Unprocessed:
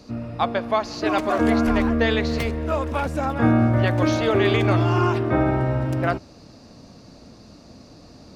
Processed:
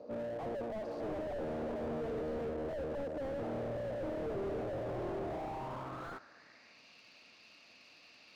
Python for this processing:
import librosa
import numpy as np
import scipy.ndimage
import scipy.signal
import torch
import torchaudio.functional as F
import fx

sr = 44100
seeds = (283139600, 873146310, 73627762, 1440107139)

y = fx.tube_stage(x, sr, drive_db=28.0, bias=0.5)
y = fx.filter_sweep_bandpass(y, sr, from_hz=550.0, to_hz=2600.0, start_s=5.07, end_s=6.86, q=4.4)
y = fx.slew_limit(y, sr, full_power_hz=2.5)
y = y * librosa.db_to_amplitude(9.0)